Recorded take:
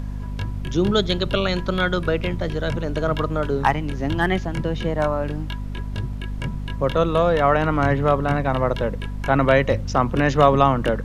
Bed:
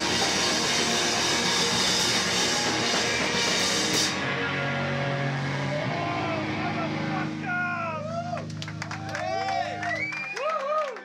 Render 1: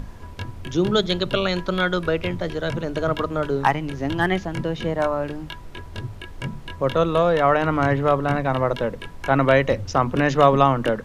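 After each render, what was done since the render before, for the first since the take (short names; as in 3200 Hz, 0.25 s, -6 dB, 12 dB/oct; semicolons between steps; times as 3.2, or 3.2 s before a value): notches 50/100/150/200/250 Hz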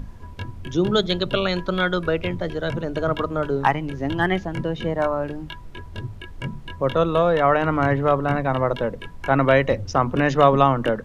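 denoiser 6 dB, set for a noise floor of -38 dBFS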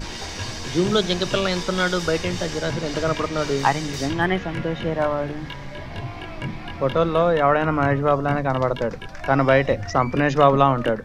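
add bed -9 dB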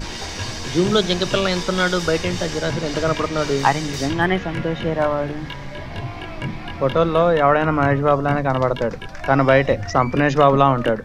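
gain +2.5 dB; limiter -2 dBFS, peak gain reduction 2 dB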